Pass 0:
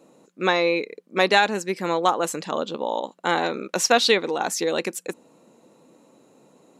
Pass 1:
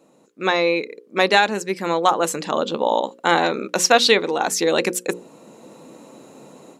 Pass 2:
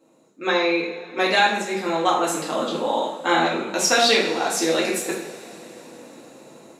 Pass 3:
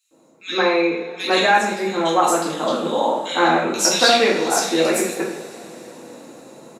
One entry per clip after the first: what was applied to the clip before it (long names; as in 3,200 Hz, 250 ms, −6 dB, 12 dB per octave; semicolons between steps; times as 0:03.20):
mains-hum notches 60/120/180/240/300/360/420/480/540 Hz; automatic gain control gain up to 13 dB; level −1 dB
coupled-rooms reverb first 0.55 s, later 4.6 s, from −21 dB, DRR −5 dB; level −7.5 dB
multiband delay without the direct sound highs, lows 110 ms, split 2,500 Hz; level +3.5 dB